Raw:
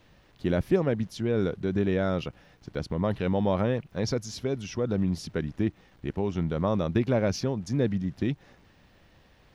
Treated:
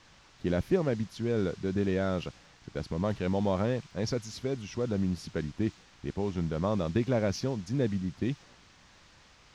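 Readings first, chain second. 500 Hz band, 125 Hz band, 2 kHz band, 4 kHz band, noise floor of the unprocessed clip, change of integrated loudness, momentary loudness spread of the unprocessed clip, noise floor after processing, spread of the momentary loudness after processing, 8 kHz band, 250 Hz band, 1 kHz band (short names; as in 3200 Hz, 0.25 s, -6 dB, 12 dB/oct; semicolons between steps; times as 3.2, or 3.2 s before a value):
-3.0 dB, -3.0 dB, -3.0 dB, -2.5 dB, -60 dBFS, -3.0 dB, 8 LU, -59 dBFS, 8 LU, -3.0 dB, -3.0 dB, -3.0 dB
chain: band noise 770–6400 Hz -53 dBFS; mismatched tape noise reduction decoder only; gain -3 dB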